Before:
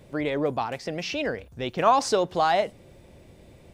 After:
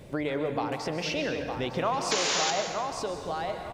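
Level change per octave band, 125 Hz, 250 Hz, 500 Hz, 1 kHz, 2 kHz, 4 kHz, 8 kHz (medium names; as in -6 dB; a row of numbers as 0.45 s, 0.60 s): -0.5 dB, -2.0 dB, -4.0 dB, -5.5 dB, 0.0 dB, +3.5 dB, +6.5 dB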